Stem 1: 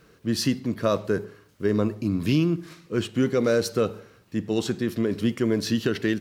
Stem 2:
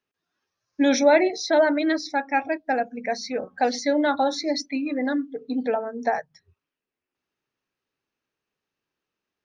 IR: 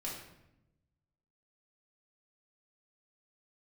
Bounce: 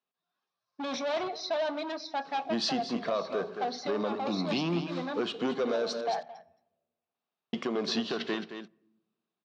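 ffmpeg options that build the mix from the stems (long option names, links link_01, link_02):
-filter_complex "[0:a]highpass=260,asoftclip=type=tanh:threshold=-19.5dB,adelay=2250,volume=2dB,asplit=3[link_01][link_02][link_03];[link_01]atrim=end=6.01,asetpts=PTS-STARTPTS,afade=type=out:start_time=6.006:duration=0.004:curve=hsin[link_04];[link_02]atrim=start=6.01:end=7.53,asetpts=PTS-STARTPTS,volume=0[link_05];[link_03]atrim=start=7.53,asetpts=PTS-STARTPTS,afade=type=in:duration=0.004:curve=hsin[link_06];[link_04][link_05][link_06]concat=n=3:v=0:a=1,asplit=3[link_07][link_08][link_09];[link_08]volume=-20.5dB[link_10];[link_09]volume=-10.5dB[link_11];[1:a]asoftclip=type=hard:threshold=-23dB,volume=-9dB,asplit=3[link_12][link_13][link_14];[link_13]volume=-16dB[link_15];[link_14]volume=-19dB[link_16];[2:a]atrim=start_sample=2205[link_17];[link_10][link_15]amix=inputs=2:normalize=0[link_18];[link_18][link_17]afir=irnorm=-1:irlink=0[link_19];[link_11][link_16]amix=inputs=2:normalize=0,aecho=0:1:220:1[link_20];[link_07][link_12][link_19][link_20]amix=inputs=4:normalize=0,highpass=160,equalizer=frequency=170:width_type=q:width=4:gain=5,equalizer=frequency=310:width_type=q:width=4:gain=-6,equalizer=frequency=710:width_type=q:width=4:gain=9,equalizer=frequency=1100:width_type=q:width=4:gain=7,equalizer=frequency=1900:width_type=q:width=4:gain=-4,equalizer=frequency=3700:width_type=q:width=4:gain=6,lowpass=frequency=5300:width=0.5412,lowpass=frequency=5300:width=1.3066,alimiter=limit=-20.5dB:level=0:latency=1:release=465"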